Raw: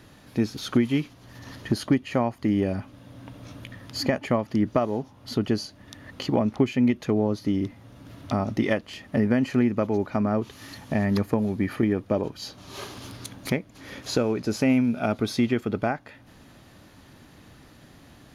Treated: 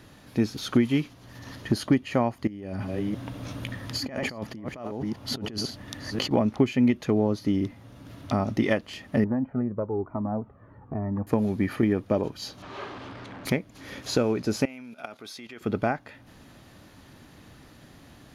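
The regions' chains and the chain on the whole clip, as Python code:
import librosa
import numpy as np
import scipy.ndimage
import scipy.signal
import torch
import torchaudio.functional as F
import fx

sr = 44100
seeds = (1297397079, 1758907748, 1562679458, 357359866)

y = fx.chain(x, sr, fx.reverse_delay(ms=338, wet_db=-11.0),
    fx.over_compress(threshold_db=-33.0, ratio=-1.0), at=(2.47, 6.31))
y = fx.chain(y, sr, fx.lowpass(hz=1200.0, slope=24),
    fx.comb_cascade(direction='falling', hz=1.1), at=(9.24, 11.27))
y = fx.chain(y, sr, fx.zero_step(step_db=-34.5),
    fx.lowpass(hz=2000.0, slope=12),
    fx.low_shelf(hz=250.0, db=-10.5), at=(12.62, 13.45))
y = fx.chain(y, sr, fx.highpass(hz=970.0, slope=6),
    fx.level_steps(step_db=14), at=(14.65, 15.61))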